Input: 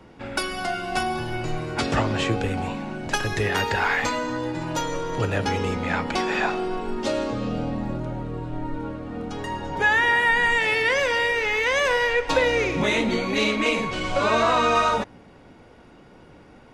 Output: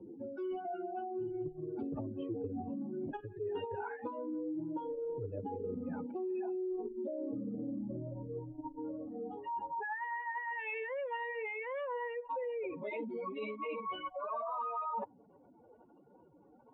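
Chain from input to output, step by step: spectral contrast enhancement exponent 2.9; distance through air 340 m; band-pass sweep 370 Hz -> 1 kHz, 7.50–9.81 s; resonant high shelf 2.4 kHz +7.5 dB, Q 3; reverse; compression 6:1, threshold -42 dBFS, peak gain reduction 17 dB; reverse; trim +5 dB

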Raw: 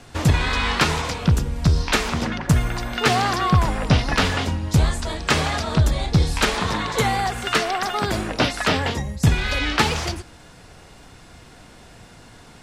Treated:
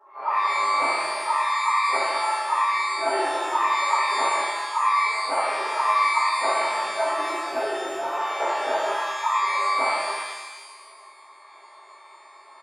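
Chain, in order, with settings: resonances exaggerated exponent 2; comb 4.2 ms, depth 83%; ring modulator 1.1 kHz; Butterworth band-pass 690 Hz, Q 1.2; pre-echo 35 ms -14 dB; pitch-shifted reverb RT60 1.2 s, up +12 st, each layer -8 dB, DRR -10 dB; trim -8.5 dB

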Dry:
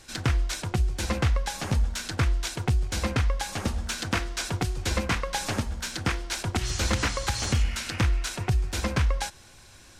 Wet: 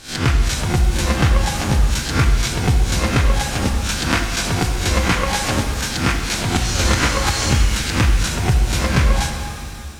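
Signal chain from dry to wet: reverse spectral sustain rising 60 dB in 0.34 s; pitch-shifted reverb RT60 2.1 s, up +7 st, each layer -8 dB, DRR 4.5 dB; trim +6.5 dB

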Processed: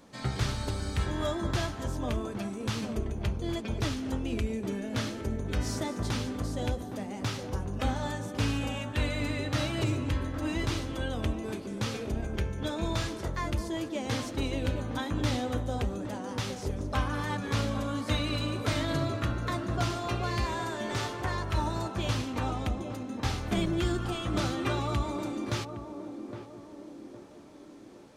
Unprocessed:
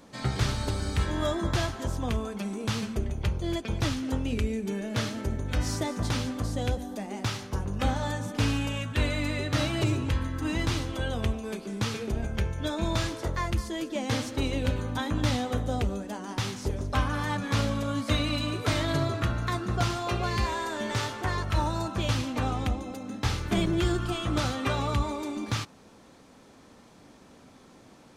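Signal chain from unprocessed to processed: band-passed feedback delay 814 ms, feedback 57%, band-pass 380 Hz, level -5.5 dB; trim -3 dB

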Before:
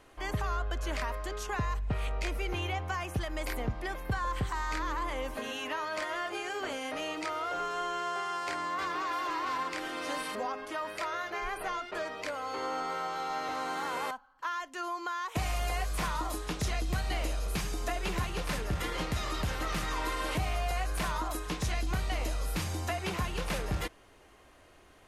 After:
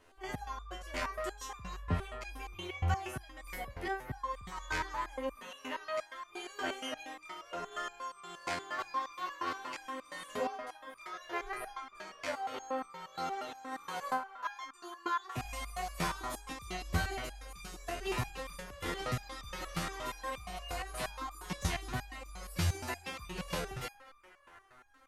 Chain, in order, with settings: random-step tremolo; on a send: band-passed feedback delay 235 ms, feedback 82%, band-pass 1.3 kHz, level -13 dB; on the sum: resonator arpeggio 8.5 Hz 86–1200 Hz; trim +10.5 dB

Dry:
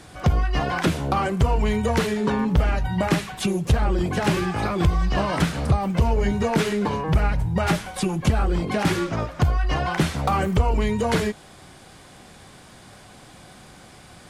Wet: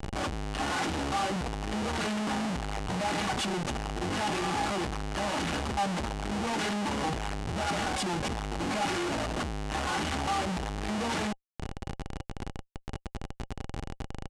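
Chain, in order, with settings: one-sided wavefolder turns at -14 dBFS; compression 12:1, threshold -22 dBFS, peak gain reduction 9.5 dB; comb 3.5 ms, depth 67%; Schmitt trigger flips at -36 dBFS; low-pass 9.3 kHz 24 dB/octave; bass shelf 63 Hz -9 dB; band-stop 540 Hz, Q 12; small resonant body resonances 800/2900 Hz, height 7 dB; trim -4 dB

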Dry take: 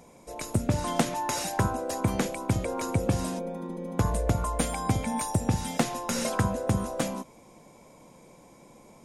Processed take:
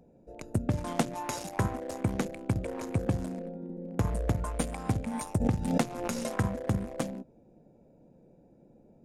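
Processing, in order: local Wiener filter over 41 samples; 5.40–6.19 s: swell ahead of each attack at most 51 dB/s; trim -2.5 dB

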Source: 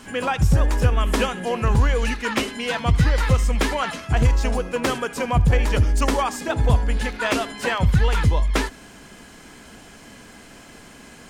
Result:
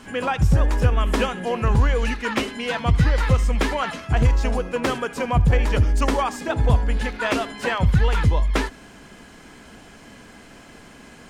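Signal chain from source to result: treble shelf 5.1 kHz -6.5 dB

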